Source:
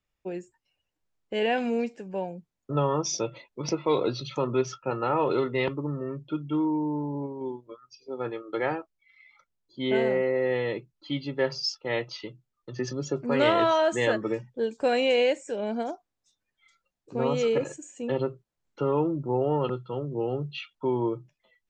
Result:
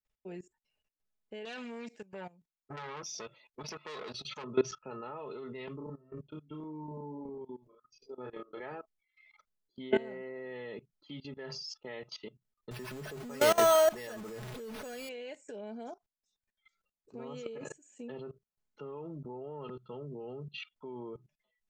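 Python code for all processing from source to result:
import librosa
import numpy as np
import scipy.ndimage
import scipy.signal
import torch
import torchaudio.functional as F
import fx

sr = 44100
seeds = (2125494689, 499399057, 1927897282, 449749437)

y = fx.chain(x, sr, fx.tilt_shelf(db=-5.0, hz=840.0),
    fx.transformer_sat(knee_hz=2300.0), at=(1.45, 4.44))
y = fx.chain(y, sr, fx.low_shelf(hz=120.0, db=6.0),
    fx.chopper(hz=2.7, depth_pct=65, duty_pct=25),
    fx.doubler(ms=32.0, db=-2), at=(5.77, 8.6))
y = fx.chain(y, sr, fx.zero_step(step_db=-30.0),
    fx.peak_eq(hz=310.0, db=-3.0, octaves=0.82),
    fx.resample_bad(factor=6, down='none', up='hold'), at=(12.71, 15.09))
y = y + 0.5 * np.pad(y, (int(4.7 * sr / 1000.0), 0))[:len(y)]
y = fx.level_steps(y, sr, step_db=20)
y = y * librosa.db_to_amplitude(-2.5)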